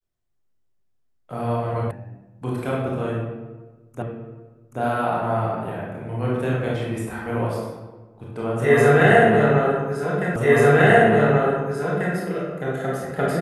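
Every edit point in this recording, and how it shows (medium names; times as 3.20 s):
1.91 s: sound stops dead
4.02 s: repeat of the last 0.78 s
10.36 s: repeat of the last 1.79 s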